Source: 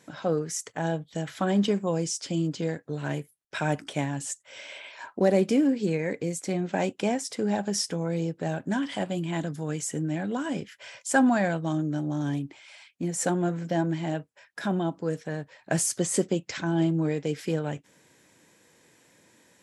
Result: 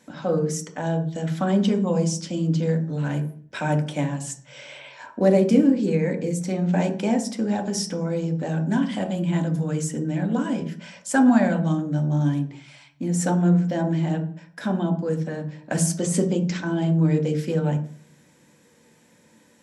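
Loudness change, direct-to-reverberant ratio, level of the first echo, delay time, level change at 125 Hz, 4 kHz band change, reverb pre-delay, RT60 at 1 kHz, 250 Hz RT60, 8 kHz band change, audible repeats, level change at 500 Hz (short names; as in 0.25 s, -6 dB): +5.0 dB, 4.0 dB, none, none, +8.0 dB, +0.5 dB, 3 ms, 0.45 s, 0.95 s, +0.5 dB, none, +3.0 dB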